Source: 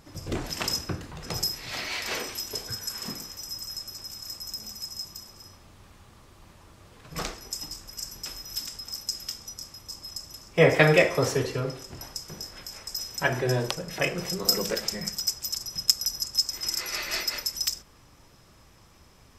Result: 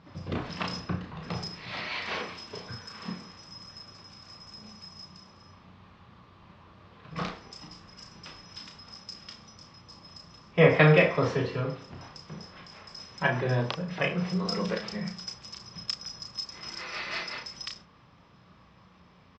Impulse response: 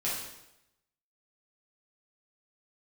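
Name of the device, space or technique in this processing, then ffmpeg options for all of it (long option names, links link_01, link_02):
guitar cabinet: -filter_complex "[0:a]highpass=76,equalizer=frequency=180:width_type=q:width=4:gain=8,equalizer=frequency=350:width_type=q:width=4:gain=-3,equalizer=frequency=1100:width_type=q:width=4:gain=5,lowpass=frequency=4100:width=0.5412,lowpass=frequency=4100:width=1.3066,asplit=2[link_01][link_02];[link_02]adelay=33,volume=-5.5dB[link_03];[link_01][link_03]amix=inputs=2:normalize=0,volume=-2.5dB"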